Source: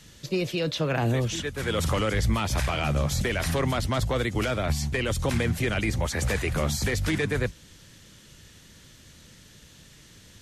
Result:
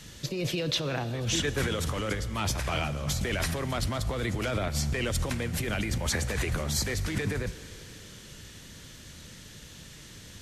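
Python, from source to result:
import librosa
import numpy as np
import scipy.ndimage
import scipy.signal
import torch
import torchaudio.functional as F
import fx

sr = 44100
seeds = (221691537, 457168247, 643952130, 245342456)

y = fx.over_compress(x, sr, threshold_db=-30.0, ratio=-1.0)
y = fx.rev_schroeder(y, sr, rt60_s=3.6, comb_ms=26, drr_db=13.5)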